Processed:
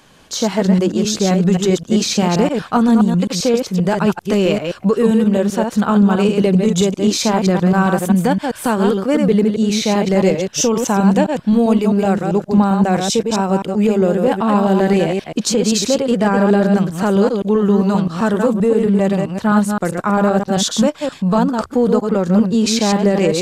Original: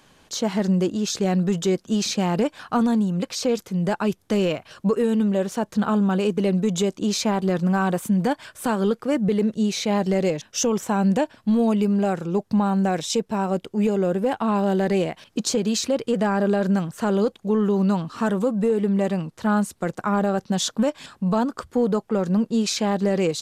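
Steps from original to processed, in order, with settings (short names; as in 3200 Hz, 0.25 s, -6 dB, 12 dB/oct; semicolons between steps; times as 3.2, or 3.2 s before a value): reverse delay 0.131 s, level -4.5 dB; gain +6 dB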